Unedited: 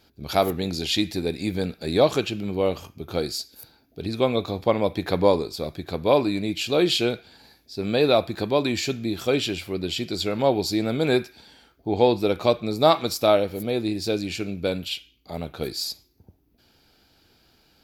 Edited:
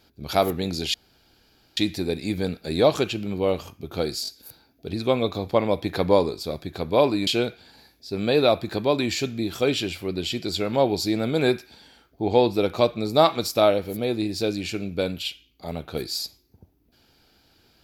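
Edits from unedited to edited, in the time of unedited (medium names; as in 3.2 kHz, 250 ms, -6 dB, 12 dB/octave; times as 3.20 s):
0.94 s: insert room tone 0.83 s
3.40 s: stutter 0.02 s, 3 plays
6.40–6.93 s: delete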